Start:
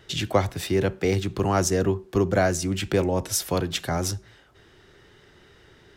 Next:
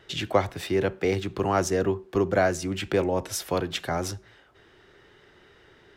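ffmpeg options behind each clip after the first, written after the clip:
-af "bass=f=250:g=-6,treble=f=4000:g=-7"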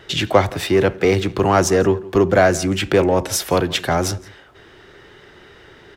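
-filter_complex "[0:a]asplit=2[s0][s1];[s1]asoftclip=type=tanh:threshold=0.0631,volume=0.596[s2];[s0][s2]amix=inputs=2:normalize=0,asplit=2[s3][s4];[s4]adelay=169.1,volume=0.0891,highshelf=f=4000:g=-3.8[s5];[s3][s5]amix=inputs=2:normalize=0,volume=2.11"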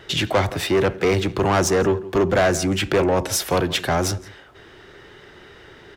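-af "asoftclip=type=tanh:threshold=0.237"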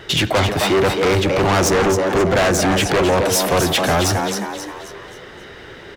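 -filter_complex "[0:a]asplit=6[s0][s1][s2][s3][s4][s5];[s1]adelay=266,afreqshift=100,volume=0.447[s6];[s2]adelay=532,afreqshift=200,volume=0.193[s7];[s3]adelay=798,afreqshift=300,volume=0.0822[s8];[s4]adelay=1064,afreqshift=400,volume=0.0355[s9];[s5]adelay=1330,afreqshift=500,volume=0.0153[s10];[s0][s6][s7][s8][s9][s10]amix=inputs=6:normalize=0,aeval=exprs='0.398*sin(PI/2*2.24*val(0)/0.398)':c=same,volume=0.596"

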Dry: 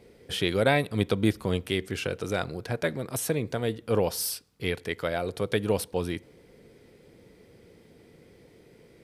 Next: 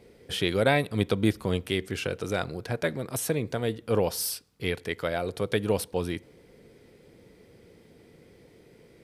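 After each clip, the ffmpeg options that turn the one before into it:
-af anull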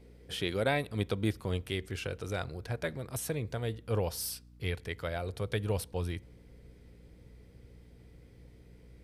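-af "asubboost=boost=5.5:cutoff=98,aeval=exprs='val(0)+0.00398*(sin(2*PI*60*n/s)+sin(2*PI*2*60*n/s)/2+sin(2*PI*3*60*n/s)/3+sin(2*PI*4*60*n/s)/4+sin(2*PI*5*60*n/s)/5)':c=same,volume=0.473"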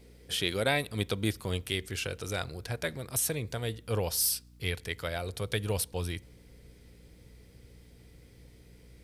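-af "highshelf=f=2700:g=10.5"

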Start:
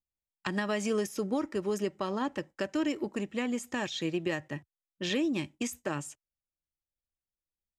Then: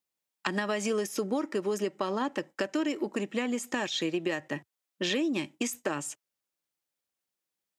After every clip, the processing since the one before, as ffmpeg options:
-af "highpass=220,acompressor=threshold=0.0141:ratio=2.5,volume=2.51"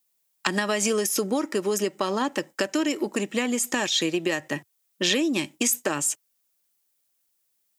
-af "crystalizer=i=2:c=0,volume=1.68"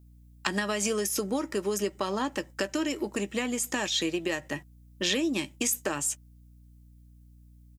-filter_complex "[0:a]aeval=exprs='val(0)+0.00355*(sin(2*PI*60*n/s)+sin(2*PI*2*60*n/s)/2+sin(2*PI*3*60*n/s)/3+sin(2*PI*4*60*n/s)/4+sin(2*PI*5*60*n/s)/5)':c=same,asplit=2[s0][s1];[s1]adelay=15,volume=0.224[s2];[s0][s2]amix=inputs=2:normalize=0,volume=0.596"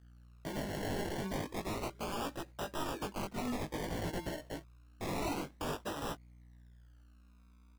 -af "acrusher=samples=28:mix=1:aa=0.000001:lfo=1:lforange=16.8:lforate=0.29,aeval=exprs='(mod(17.8*val(0)+1,2)-1)/17.8':c=same,flanger=delay=17:depth=4.1:speed=0.47,volume=0.668"

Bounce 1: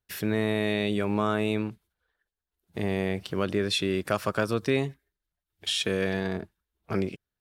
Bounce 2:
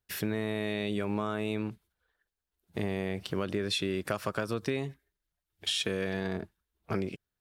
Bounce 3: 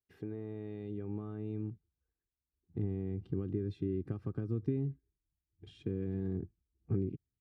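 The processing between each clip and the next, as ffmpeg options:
-af "acompressor=threshold=0.0447:ratio=6"
-af "bandpass=f=220:t=q:w=1.3:csg=0,aecho=1:1:2.5:0.66,asubboost=boost=9:cutoff=200,volume=0.531"

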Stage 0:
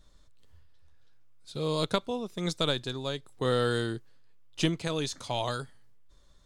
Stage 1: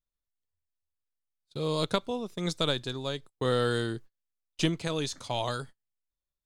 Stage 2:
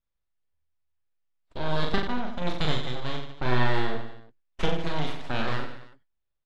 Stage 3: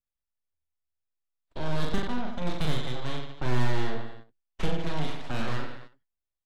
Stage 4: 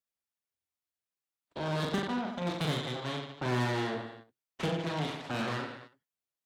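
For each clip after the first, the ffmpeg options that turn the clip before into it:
-af "agate=range=0.0224:threshold=0.00708:ratio=16:detection=peak"
-af "aeval=exprs='abs(val(0))':c=same,lowpass=3000,aecho=1:1:40|90|152.5|230.6|328.3:0.631|0.398|0.251|0.158|0.1,volume=1.5"
-filter_complex "[0:a]agate=range=0.355:threshold=0.00891:ratio=16:detection=peak,acrossover=split=310[s0][s1];[s1]asoftclip=type=tanh:threshold=0.0266[s2];[s0][s2]amix=inputs=2:normalize=0"
-af "highpass=140"

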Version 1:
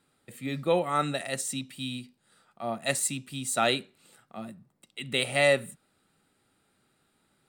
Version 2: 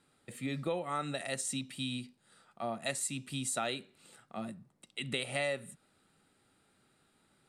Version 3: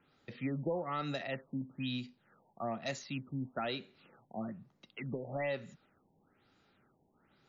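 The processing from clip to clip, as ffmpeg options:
-af "lowpass=f=12000:w=0.5412,lowpass=f=12000:w=1.3066,acompressor=threshold=0.0224:ratio=4"
-filter_complex "[0:a]acrossover=split=380[s0][s1];[s1]asoftclip=type=tanh:threshold=0.0251[s2];[s0][s2]amix=inputs=2:normalize=0,afftfilt=real='re*lt(b*sr/1024,970*pow(7400/970,0.5+0.5*sin(2*PI*1.1*pts/sr)))':imag='im*lt(b*sr/1024,970*pow(7400/970,0.5+0.5*sin(2*PI*1.1*pts/sr)))':win_size=1024:overlap=0.75,volume=1.12"

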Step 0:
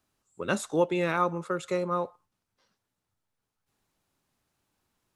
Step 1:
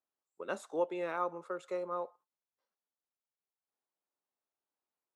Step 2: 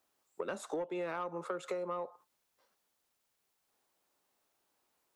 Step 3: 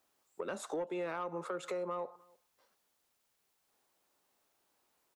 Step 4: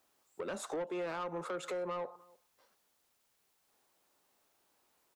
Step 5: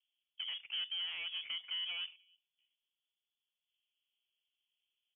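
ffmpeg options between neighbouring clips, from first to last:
-af "highpass=570,agate=range=0.398:threshold=0.00158:ratio=16:detection=peak,tiltshelf=f=1100:g=8,volume=0.398"
-filter_complex "[0:a]acrossover=split=170[s0][s1];[s1]acompressor=threshold=0.00501:ratio=2[s2];[s0][s2]amix=inputs=2:normalize=0,asoftclip=type=tanh:threshold=0.0211,acompressor=threshold=0.00316:ratio=6,volume=5.62"
-filter_complex "[0:a]asplit=2[s0][s1];[s1]alimiter=level_in=3.35:limit=0.0631:level=0:latency=1:release=74,volume=0.299,volume=1.33[s2];[s0][s2]amix=inputs=2:normalize=0,asplit=2[s3][s4];[s4]adelay=303.2,volume=0.0447,highshelf=f=4000:g=-6.82[s5];[s3][s5]amix=inputs=2:normalize=0,volume=0.531"
-af "asoftclip=type=tanh:threshold=0.0188,volume=1.33"
-af "highshelf=f=2400:g=-10,adynamicsmooth=sensitivity=7.5:basefreq=500,lowpass=f=3000:t=q:w=0.5098,lowpass=f=3000:t=q:w=0.6013,lowpass=f=3000:t=q:w=0.9,lowpass=f=3000:t=q:w=2.563,afreqshift=-3500,volume=0.891"

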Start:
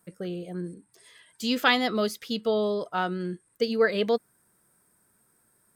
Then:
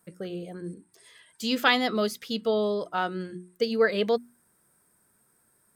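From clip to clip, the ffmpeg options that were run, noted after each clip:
-af "bandreject=f=60:t=h:w=6,bandreject=f=120:t=h:w=6,bandreject=f=180:t=h:w=6,bandreject=f=240:t=h:w=6,bandreject=f=300:t=h:w=6,bandreject=f=360:t=h:w=6"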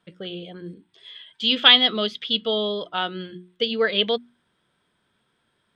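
-af "lowpass=f=3300:t=q:w=8.2"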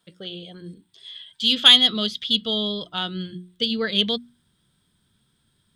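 -af "asubboost=boost=6.5:cutoff=210,aexciter=amount=2.8:drive=6.9:freq=3400,volume=0.668"

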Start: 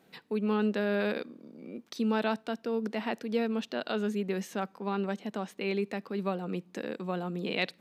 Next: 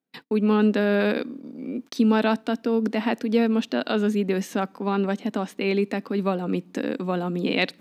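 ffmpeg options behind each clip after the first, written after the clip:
-af "agate=range=0.0224:threshold=0.00316:ratio=16:detection=peak,equalizer=f=270:t=o:w=0.34:g=10,volume=2.24"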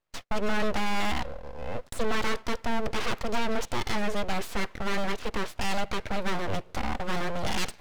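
-filter_complex "[0:a]asplit=2[s0][s1];[s1]highpass=f=720:p=1,volume=14.1,asoftclip=type=tanh:threshold=0.398[s2];[s0][s2]amix=inputs=2:normalize=0,lowpass=f=2400:p=1,volume=0.501,aeval=exprs='abs(val(0))':c=same,volume=0.447"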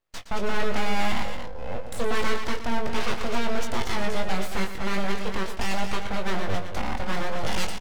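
-filter_complex "[0:a]asplit=2[s0][s1];[s1]adelay=21,volume=0.501[s2];[s0][s2]amix=inputs=2:normalize=0,asplit=2[s3][s4];[s4]aecho=0:1:116.6|230.3:0.282|0.398[s5];[s3][s5]amix=inputs=2:normalize=0"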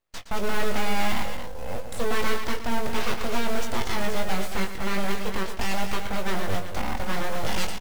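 -af "acrusher=bits=6:mode=log:mix=0:aa=0.000001"

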